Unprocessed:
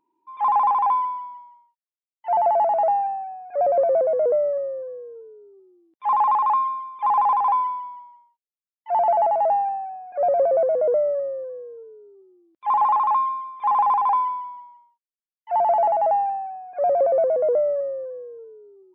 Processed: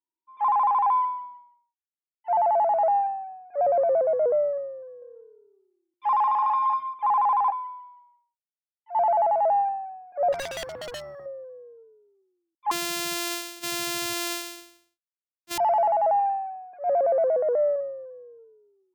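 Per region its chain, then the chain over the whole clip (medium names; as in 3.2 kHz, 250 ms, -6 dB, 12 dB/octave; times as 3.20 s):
4.82–6.94 s: treble shelf 3 kHz +11 dB + delay 198 ms -9 dB
7.50–8.95 s: steep high-pass 550 Hz 48 dB/octave + compression 1.5:1, threshold -45 dBFS
10.32–11.26 s: high-pass 100 Hz 6 dB/octave + overload inside the chain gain 16.5 dB + spectrum-flattening compressor 2:1
12.71–15.58 s: sorted samples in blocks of 128 samples + high-pass 250 Hz 6 dB/octave
16.19–17.76 s: high-pass 150 Hz + transient shaper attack -11 dB, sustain +6 dB
whole clip: dynamic bell 330 Hz, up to -6 dB, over -36 dBFS, Q 0.72; peak limiter -19 dBFS; three bands expanded up and down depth 70%; trim +1.5 dB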